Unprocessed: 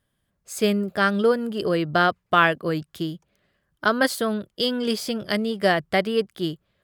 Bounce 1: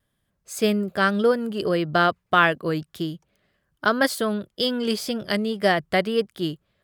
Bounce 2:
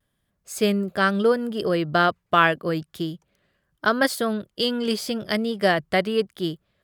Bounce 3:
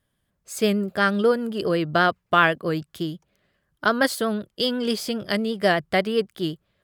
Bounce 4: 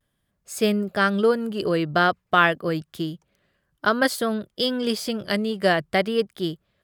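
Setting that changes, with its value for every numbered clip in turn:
pitch vibrato, speed: 1.8, 0.79, 8, 0.5 Hertz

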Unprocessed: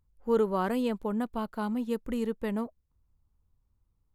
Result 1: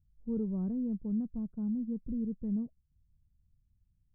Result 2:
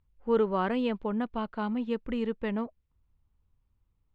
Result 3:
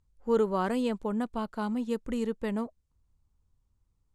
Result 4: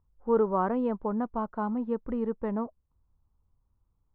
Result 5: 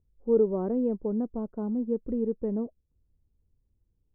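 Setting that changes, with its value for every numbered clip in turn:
low-pass with resonance, frequency: 170, 2,900, 8,000, 1,100, 440 Hertz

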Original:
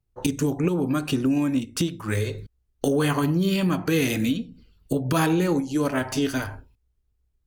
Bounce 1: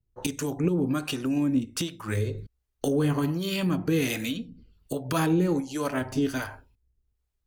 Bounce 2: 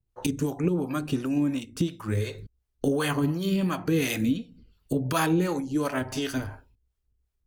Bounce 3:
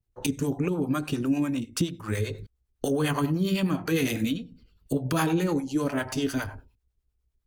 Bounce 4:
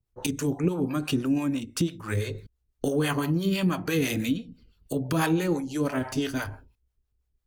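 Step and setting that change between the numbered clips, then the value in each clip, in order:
two-band tremolo in antiphase, speed: 1.3, 2.8, 9.9, 6 Hertz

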